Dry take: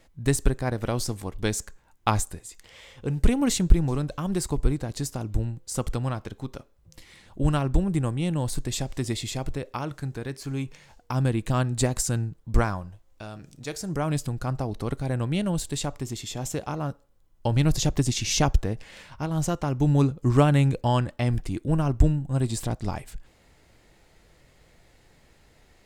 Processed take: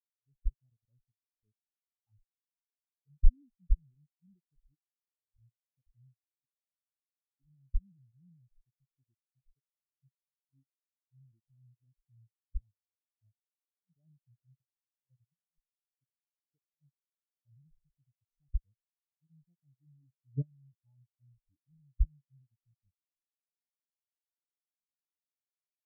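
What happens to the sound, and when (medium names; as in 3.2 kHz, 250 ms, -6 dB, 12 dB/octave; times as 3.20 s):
4.54–5.16 s: fade out
12.51–13.33 s: three bands compressed up and down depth 70%
14.61–16.00 s: static phaser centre 1 kHz, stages 6
whole clip: bass shelf 490 Hz +4 dB; level held to a coarse grid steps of 13 dB; spectral contrast expander 4:1; trim -7 dB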